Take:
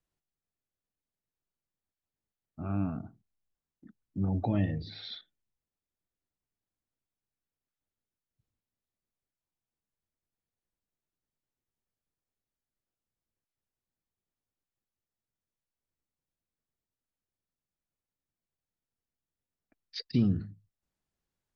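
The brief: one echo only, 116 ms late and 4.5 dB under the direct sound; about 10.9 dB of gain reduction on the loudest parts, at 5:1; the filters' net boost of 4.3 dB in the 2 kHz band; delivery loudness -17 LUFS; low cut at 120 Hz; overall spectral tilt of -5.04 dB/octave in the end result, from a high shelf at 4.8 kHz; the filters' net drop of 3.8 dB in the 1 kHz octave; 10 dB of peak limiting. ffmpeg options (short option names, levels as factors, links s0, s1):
-af "highpass=120,equalizer=f=1000:t=o:g=-7.5,equalizer=f=2000:t=o:g=8,highshelf=f=4800:g=-6.5,acompressor=threshold=0.0178:ratio=5,alimiter=level_in=3.76:limit=0.0631:level=0:latency=1,volume=0.266,aecho=1:1:116:0.596,volume=25.1"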